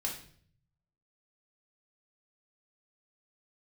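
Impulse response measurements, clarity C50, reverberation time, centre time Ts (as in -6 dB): 6.5 dB, 0.55 s, 24 ms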